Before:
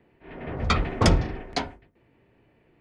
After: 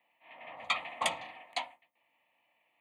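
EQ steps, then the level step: HPF 530 Hz 12 dB/oct; tilt +2 dB/oct; fixed phaser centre 1500 Hz, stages 6; -4.0 dB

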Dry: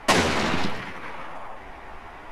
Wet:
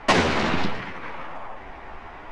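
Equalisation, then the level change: air absorption 85 m; +1.5 dB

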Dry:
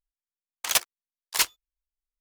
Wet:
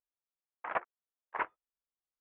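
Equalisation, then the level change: HPF 670 Hz 6 dB/oct; Bessel low-pass 1100 Hz, order 8; air absorption 260 m; +5.0 dB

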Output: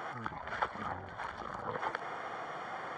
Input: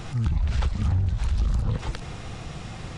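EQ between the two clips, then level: polynomial smoothing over 41 samples; HPF 680 Hz 12 dB/oct; +6.0 dB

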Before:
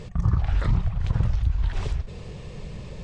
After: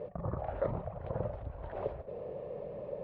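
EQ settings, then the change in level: band-pass 570 Hz, Q 4.9; air absorption 290 m; +12.0 dB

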